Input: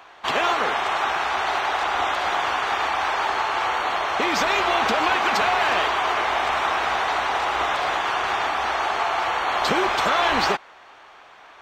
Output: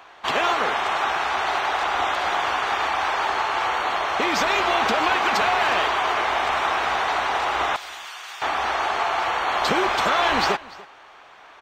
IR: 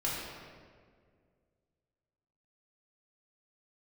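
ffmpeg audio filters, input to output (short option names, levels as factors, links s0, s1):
-filter_complex "[0:a]asettb=1/sr,asplit=3[s0][s1][s2];[s0]atrim=end=7.764[s3];[s1]atrim=start=7.76:end=8.42,asetpts=PTS-STARTPTS,afade=t=in:d=0.004:c=qsin,afade=t=out:st=0.656:d=0.004:c=qsin,aderivative[s4];[s2]atrim=start=8.416[s5];[s3][s4]acrossfade=d=0.004:c1=hsin:c2=qsin[s6];[s6][s5]acrossfade=d=0.004:c1=qsin:c2=hsin,aecho=1:1:291:0.0891"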